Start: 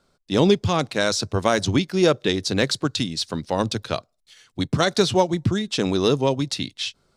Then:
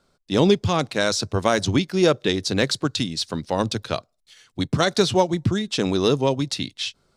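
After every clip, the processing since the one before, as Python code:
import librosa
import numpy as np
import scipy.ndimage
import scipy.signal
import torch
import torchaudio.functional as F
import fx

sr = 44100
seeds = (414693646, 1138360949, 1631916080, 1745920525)

y = x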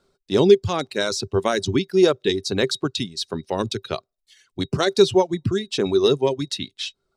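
y = fx.dereverb_blind(x, sr, rt60_s=1.0)
y = fx.small_body(y, sr, hz=(390.0, 3800.0), ring_ms=80, db=12)
y = y * librosa.db_to_amplitude(-2.0)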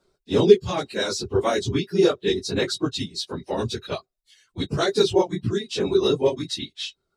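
y = fx.phase_scramble(x, sr, seeds[0], window_ms=50)
y = y * librosa.db_to_amplitude(-2.0)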